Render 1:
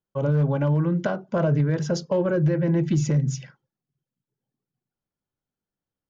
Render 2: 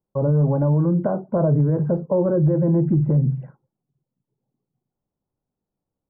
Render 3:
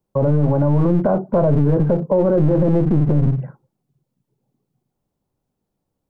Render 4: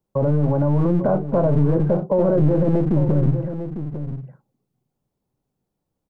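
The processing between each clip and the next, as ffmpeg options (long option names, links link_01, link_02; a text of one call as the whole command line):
ffmpeg -i in.wav -filter_complex "[0:a]asplit=2[link_01][link_02];[link_02]alimiter=limit=-24dB:level=0:latency=1:release=19,volume=2dB[link_03];[link_01][link_03]amix=inputs=2:normalize=0,lowpass=frequency=1000:width=0.5412,lowpass=frequency=1000:width=1.3066" out.wav
ffmpeg -i in.wav -filter_complex "[0:a]acrossover=split=390[link_01][link_02];[link_01]aeval=exprs='clip(val(0),-1,0.0422)':channel_layout=same[link_03];[link_03][link_02]amix=inputs=2:normalize=0,alimiter=level_in=14dB:limit=-1dB:release=50:level=0:latency=1,volume=-6.5dB" out.wav
ffmpeg -i in.wav -af "aecho=1:1:851:0.316,volume=-2.5dB" out.wav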